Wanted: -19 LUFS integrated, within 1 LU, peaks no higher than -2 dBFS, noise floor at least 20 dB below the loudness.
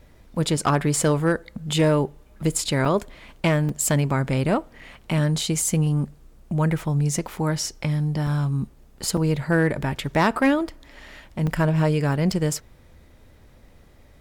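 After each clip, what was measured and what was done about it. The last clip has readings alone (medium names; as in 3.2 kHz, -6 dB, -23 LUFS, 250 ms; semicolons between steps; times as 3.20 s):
clipped samples 0.3%; clipping level -11.5 dBFS; dropouts 7; longest dropout 4.0 ms; loudness -23.0 LUFS; peak level -11.5 dBFS; loudness target -19.0 LUFS
-> clip repair -11.5 dBFS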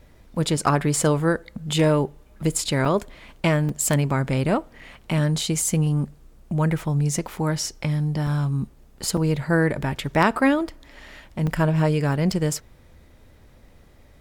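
clipped samples 0.0%; dropouts 7; longest dropout 4.0 ms
-> interpolate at 2.85/3.69/4.81/8.27/9.17/11.47/12.32 s, 4 ms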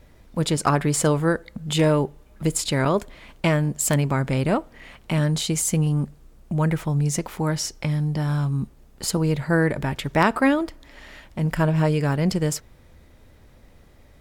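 dropouts 0; loudness -23.0 LUFS; peak level -3.5 dBFS; loudness target -19.0 LUFS
-> trim +4 dB; peak limiter -2 dBFS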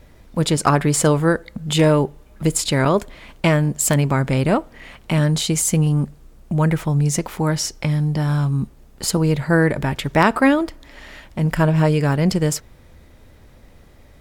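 loudness -19.0 LUFS; peak level -2.0 dBFS; noise floor -48 dBFS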